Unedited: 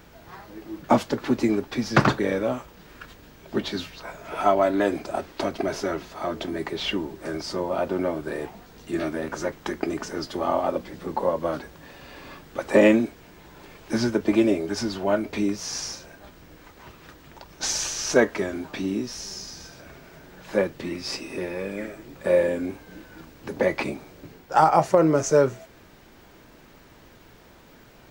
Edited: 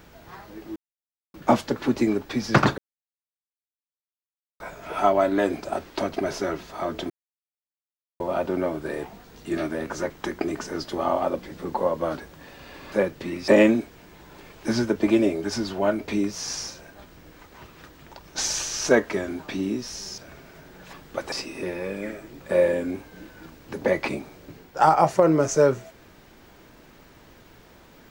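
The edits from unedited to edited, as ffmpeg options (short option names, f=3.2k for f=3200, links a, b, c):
-filter_complex "[0:a]asplit=11[a][b][c][d][e][f][g][h][i][j][k];[a]atrim=end=0.76,asetpts=PTS-STARTPTS,afade=t=out:st=0.756:d=0.004:c=hsin,apad=pad_dur=0.58[l];[b]atrim=start=0.76:end=2.2,asetpts=PTS-STARTPTS,afade=t=in:d=0.004:c=hsin,afade=t=out:st=1.436:d=0.004:c=hsin[m];[c]atrim=start=2.2:end=4.02,asetpts=PTS-STARTPTS,volume=0[n];[d]atrim=start=4.02:end=6.52,asetpts=PTS-STARTPTS,afade=t=in:d=0.004:c=hsin,afade=t=out:st=2.496:d=0.004:c=hsin[o];[e]atrim=start=6.52:end=7.62,asetpts=PTS-STARTPTS,volume=0[p];[f]atrim=start=7.62:end=12.342,asetpts=PTS-STARTPTS,afade=t=in:d=0.004:c=hsin[q];[g]atrim=start=20.508:end=21.072[r];[h]atrim=start=12.728:end=19.432[s];[i]atrim=start=19.758:end=20.512[t];[j]atrim=start=12.338:end=12.732[u];[k]atrim=start=21.068[v];[l][m][n][o][p][q]concat=n=6:v=0:a=1[w];[w][r]acrossfade=d=0.004:c1=hsin:c2=hsin[x];[x][s]acrossfade=d=0.004:c1=hsin:c2=hsin[y];[y][t]acrossfade=d=0.004:c1=hsin:c2=hsin[z];[z][u]acrossfade=d=0.004:c1=hsin:c2=hsin[aa];[aa][v]acrossfade=d=0.004:c1=hsin:c2=hsin"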